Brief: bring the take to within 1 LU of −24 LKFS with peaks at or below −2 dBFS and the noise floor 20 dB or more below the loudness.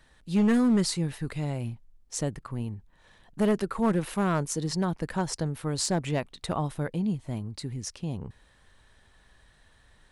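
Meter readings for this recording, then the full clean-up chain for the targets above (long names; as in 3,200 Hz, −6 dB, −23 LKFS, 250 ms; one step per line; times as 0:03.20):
share of clipped samples 0.9%; peaks flattened at −18.0 dBFS; integrated loudness −29.0 LKFS; sample peak −18.0 dBFS; target loudness −24.0 LKFS
→ clipped peaks rebuilt −18 dBFS
level +5 dB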